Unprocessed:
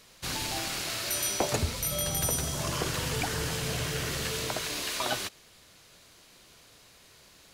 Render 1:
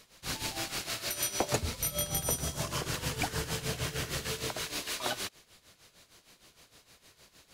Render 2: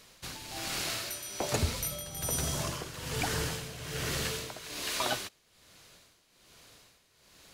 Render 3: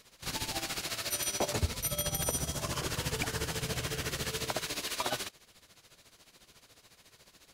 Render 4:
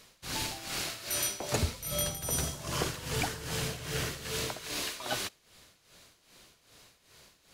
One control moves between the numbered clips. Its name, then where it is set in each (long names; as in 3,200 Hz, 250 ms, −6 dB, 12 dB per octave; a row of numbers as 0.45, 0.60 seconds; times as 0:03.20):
amplitude tremolo, speed: 6.5, 1.2, 14, 2.5 Hertz